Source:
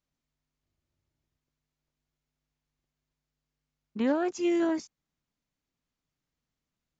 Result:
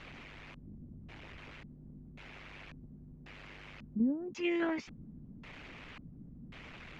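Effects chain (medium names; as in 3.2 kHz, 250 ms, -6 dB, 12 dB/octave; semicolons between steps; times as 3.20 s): jump at every zero crossing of -41 dBFS; harmonic-percussive split harmonic -9 dB; LFO low-pass square 0.92 Hz 220–2400 Hz; trim +1.5 dB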